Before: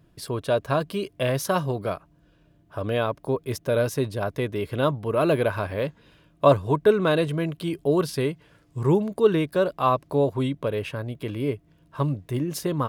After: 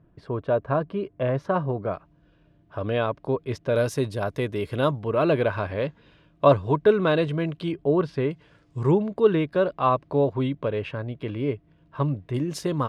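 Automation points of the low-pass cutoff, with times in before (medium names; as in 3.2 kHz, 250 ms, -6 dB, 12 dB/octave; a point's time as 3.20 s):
1.5 kHz
from 1.94 s 3.8 kHz
from 3.76 s 9.6 kHz
from 4.99 s 4.4 kHz
from 7.72 s 2.2 kHz
from 8.31 s 6 kHz
from 8.91 s 3.3 kHz
from 12.34 s 7.7 kHz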